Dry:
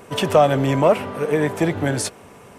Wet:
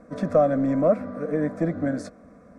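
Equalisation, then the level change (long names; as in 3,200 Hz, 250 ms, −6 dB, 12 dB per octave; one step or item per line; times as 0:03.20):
low-pass filter 5,300 Hz 12 dB per octave
tilt shelving filter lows +7 dB, about 770 Hz
phaser with its sweep stopped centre 590 Hz, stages 8
−5.0 dB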